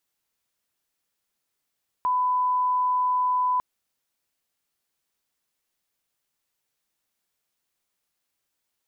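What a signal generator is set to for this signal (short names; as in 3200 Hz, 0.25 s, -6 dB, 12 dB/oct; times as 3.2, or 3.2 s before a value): line-up tone -20 dBFS 1.55 s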